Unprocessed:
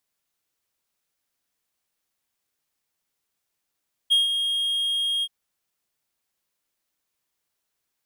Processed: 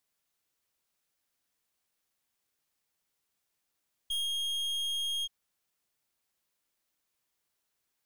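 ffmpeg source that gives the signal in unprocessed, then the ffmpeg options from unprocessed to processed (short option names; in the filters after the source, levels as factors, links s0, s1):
-f lavfi -i "aevalsrc='0.237*(1-4*abs(mod(3250*t+0.25,1)-0.5))':d=1.178:s=44100,afade=t=in:d=0.022,afade=t=out:st=0.022:d=0.152:silence=0.422,afade=t=out:st=1.13:d=0.048"
-af "aeval=exprs='(tanh(39.8*val(0)+0.45)-tanh(0.45))/39.8':c=same"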